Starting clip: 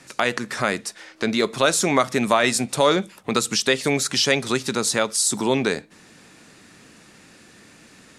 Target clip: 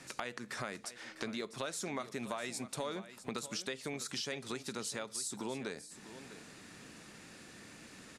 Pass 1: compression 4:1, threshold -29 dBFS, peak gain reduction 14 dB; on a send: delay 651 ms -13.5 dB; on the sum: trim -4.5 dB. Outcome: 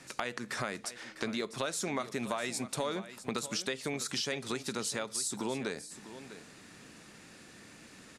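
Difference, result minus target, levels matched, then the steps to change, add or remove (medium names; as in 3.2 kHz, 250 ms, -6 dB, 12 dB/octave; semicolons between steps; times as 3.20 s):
compression: peak gain reduction -5 dB
change: compression 4:1, threshold -35.5 dBFS, peak gain reduction 18.5 dB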